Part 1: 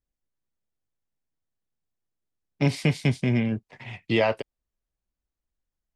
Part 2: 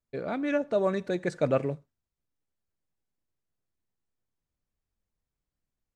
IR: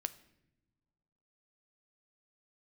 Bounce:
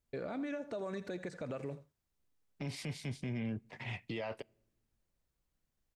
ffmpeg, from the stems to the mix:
-filter_complex "[0:a]acompressor=threshold=-29dB:ratio=6,volume=-3dB,asplit=2[a][b];[b]volume=-17dB[c];[1:a]acrossover=split=1000|4300[d][e][f];[d]acompressor=threshold=-34dB:ratio=4[g];[e]acompressor=threshold=-45dB:ratio=4[h];[f]acompressor=threshold=-59dB:ratio=4[i];[g][h][i]amix=inputs=3:normalize=0,alimiter=level_in=5.5dB:limit=-24dB:level=0:latency=1:release=67,volume=-5.5dB,acompressor=threshold=-38dB:ratio=3,volume=1.5dB,asplit=2[j][k];[k]volume=-16dB[l];[2:a]atrim=start_sample=2205[m];[c][m]afir=irnorm=-1:irlink=0[n];[l]aecho=0:1:82:1[o];[a][j][n][o]amix=inputs=4:normalize=0,alimiter=level_in=7.5dB:limit=-24dB:level=0:latency=1:release=12,volume=-7.5dB"

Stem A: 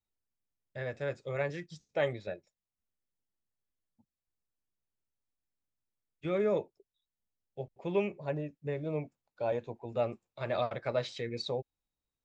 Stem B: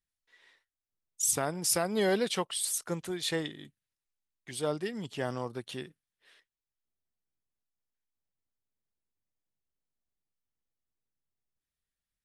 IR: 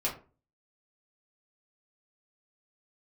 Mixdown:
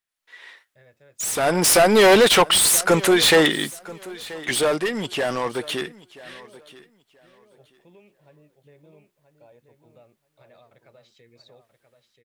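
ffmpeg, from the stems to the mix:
-filter_complex "[0:a]alimiter=level_in=4dB:limit=-24dB:level=0:latency=1:release=258,volume=-4dB,highshelf=f=3.7k:g=12,volume=-16dB,asplit=2[a][b];[b]volume=-7.5dB[c];[1:a]dynaudnorm=f=100:g=5:m=11.5dB,asplit=2[d][e];[e]highpass=f=720:p=1,volume=28dB,asoftclip=type=tanh:threshold=-1dB[f];[d][f]amix=inputs=2:normalize=0,lowpass=f=7.9k:p=1,volume=-6dB,volume=-4dB,afade=t=in:st=1.36:d=0.24:silence=0.334965,afade=t=out:st=4.21:d=0.57:silence=0.398107,asplit=2[g][h];[h]volume=-20dB[i];[c][i]amix=inputs=2:normalize=0,aecho=0:1:981|1962|2943:1|0.21|0.0441[j];[a][g][j]amix=inputs=3:normalize=0,equalizer=f=5.5k:w=0.84:g=-4.5"

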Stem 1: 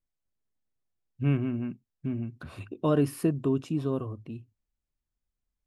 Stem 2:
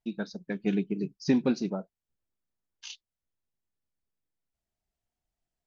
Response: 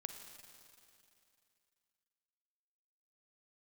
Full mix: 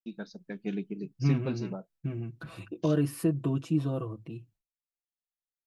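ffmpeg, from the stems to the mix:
-filter_complex "[0:a]aecho=1:1:6.1:0.97,volume=-2.5dB[a];[1:a]volume=-6dB[b];[a][b]amix=inputs=2:normalize=0,agate=range=-33dB:threshold=-58dB:ratio=3:detection=peak,alimiter=limit=-16dB:level=0:latency=1:release=204"

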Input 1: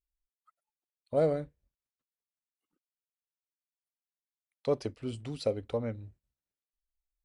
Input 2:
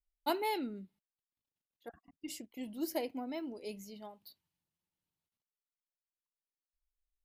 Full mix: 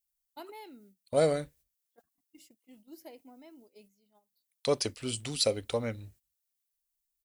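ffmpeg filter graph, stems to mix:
-filter_complex "[0:a]crystalizer=i=9:c=0,volume=-0.5dB,asplit=2[a][b];[1:a]adelay=100,volume=-1dB[c];[b]apad=whole_len=323809[d];[c][d]sidechaingate=range=-12dB:threshold=-56dB:ratio=16:detection=peak[e];[a][e]amix=inputs=2:normalize=0,agate=range=-10dB:threshold=-58dB:ratio=16:detection=peak"

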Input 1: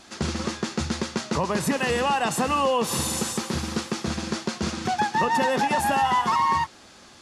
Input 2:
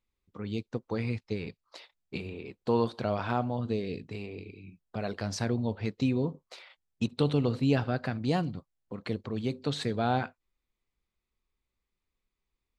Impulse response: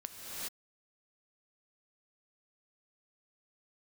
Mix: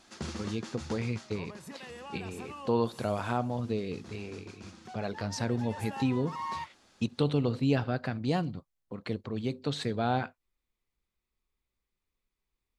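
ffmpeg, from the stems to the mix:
-filter_complex "[0:a]volume=-3dB,afade=t=out:st=1.06:d=0.45:silence=0.281838,afade=t=in:st=5.35:d=0.26:silence=0.421697[a];[1:a]volume=-1dB,asplit=2[b][c];[c]apad=whole_len=318399[d];[a][d]sidechaincompress=threshold=-35dB:ratio=8:attack=27:release=229[e];[e][b]amix=inputs=2:normalize=0"

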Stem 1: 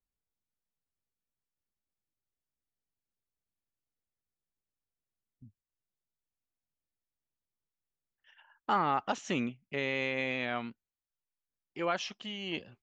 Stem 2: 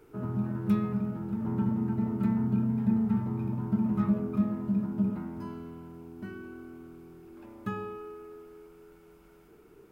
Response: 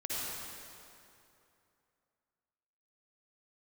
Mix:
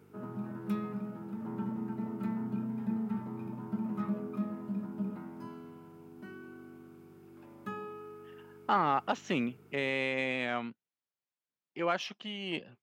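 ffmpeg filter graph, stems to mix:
-filter_complex "[0:a]adynamicsmooth=sensitivity=3.5:basefreq=5.2k,volume=1dB[a];[1:a]highpass=f=290:p=1,aeval=exprs='val(0)+0.00355*(sin(2*PI*50*n/s)+sin(2*PI*2*50*n/s)/2+sin(2*PI*3*50*n/s)/3+sin(2*PI*4*50*n/s)/4+sin(2*PI*5*50*n/s)/5)':c=same,volume=-3dB[b];[a][b]amix=inputs=2:normalize=0,highpass=f=120:w=0.5412,highpass=f=120:w=1.3066"

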